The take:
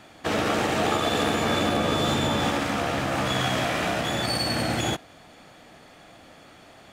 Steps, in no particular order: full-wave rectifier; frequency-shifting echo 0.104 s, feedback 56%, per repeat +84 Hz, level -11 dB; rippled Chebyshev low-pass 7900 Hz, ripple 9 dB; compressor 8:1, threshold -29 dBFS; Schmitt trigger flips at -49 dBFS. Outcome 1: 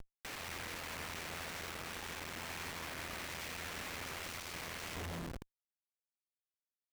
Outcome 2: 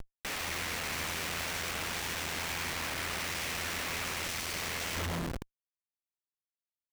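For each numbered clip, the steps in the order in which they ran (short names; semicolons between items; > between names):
full-wave rectifier > frequency-shifting echo > compressor > rippled Chebyshev low-pass > Schmitt trigger; full-wave rectifier > frequency-shifting echo > rippled Chebyshev low-pass > Schmitt trigger > compressor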